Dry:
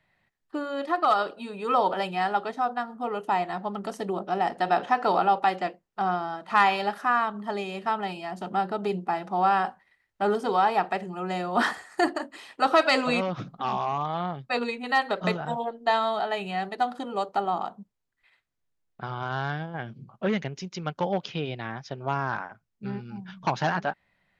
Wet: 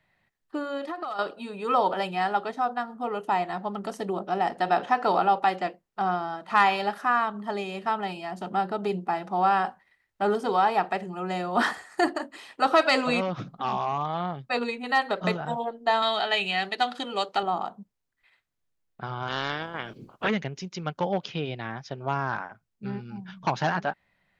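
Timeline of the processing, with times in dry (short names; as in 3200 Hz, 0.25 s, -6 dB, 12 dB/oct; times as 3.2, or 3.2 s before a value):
0.77–1.19 compressor 16:1, threshold -29 dBFS
16.02–17.43 weighting filter D
19.27–20.29 spectral limiter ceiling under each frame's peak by 20 dB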